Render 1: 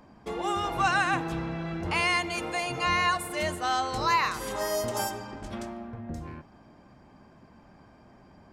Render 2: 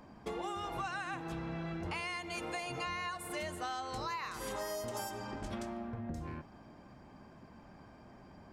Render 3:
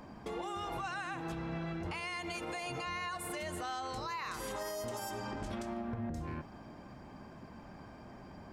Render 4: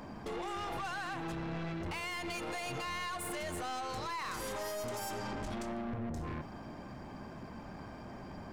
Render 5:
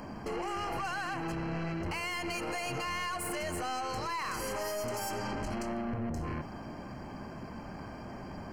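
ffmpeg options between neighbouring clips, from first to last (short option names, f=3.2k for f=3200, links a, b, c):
-af "acompressor=threshold=-35dB:ratio=12,volume=-1dB"
-af "alimiter=level_in=11.5dB:limit=-24dB:level=0:latency=1:release=101,volume=-11.5dB,volume=4.5dB"
-af "aeval=exprs='(tanh(112*val(0)+0.3)-tanh(0.3))/112':c=same,volume=5.5dB"
-af "asuperstop=centerf=3600:order=20:qfactor=5,volume=3.5dB"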